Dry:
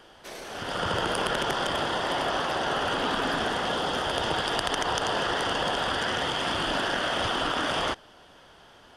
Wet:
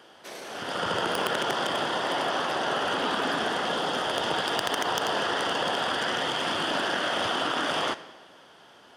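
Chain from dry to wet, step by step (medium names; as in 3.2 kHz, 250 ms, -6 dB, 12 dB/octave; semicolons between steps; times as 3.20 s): tracing distortion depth 0.03 ms; high-pass 160 Hz 12 dB/octave; algorithmic reverb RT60 1.3 s, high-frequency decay 0.9×, pre-delay 0 ms, DRR 14.5 dB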